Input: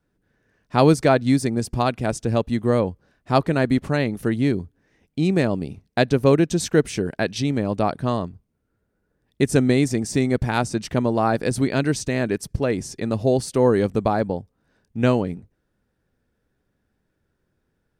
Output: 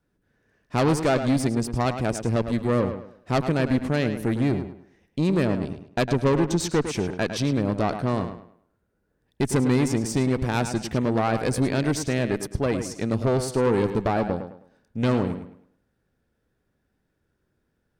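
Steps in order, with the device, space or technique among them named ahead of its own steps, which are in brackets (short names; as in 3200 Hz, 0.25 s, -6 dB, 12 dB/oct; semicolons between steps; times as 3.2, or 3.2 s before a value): 5.46–6.94 LPF 8900 Hz 24 dB/oct; rockabilly slapback (tube stage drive 17 dB, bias 0.55; tape echo 0.106 s, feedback 34%, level -7.5 dB, low-pass 4000 Hz); gain +1 dB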